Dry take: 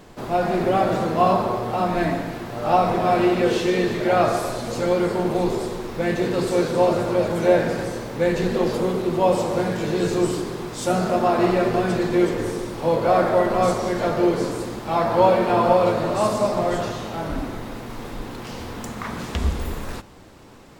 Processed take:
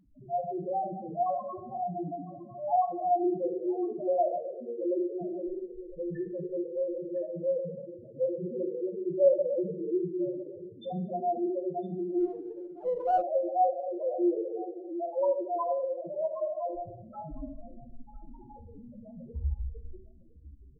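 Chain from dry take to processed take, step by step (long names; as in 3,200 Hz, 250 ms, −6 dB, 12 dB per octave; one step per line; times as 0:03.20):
auto-filter low-pass saw down 0.2 Hz 400–5,200 Hz
spectral peaks only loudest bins 1
single-tap delay 1,008 ms −19 dB
rectangular room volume 130 cubic metres, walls mixed, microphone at 0.36 metres
0:12.20–0:13.22: windowed peak hold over 3 samples
level −4.5 dB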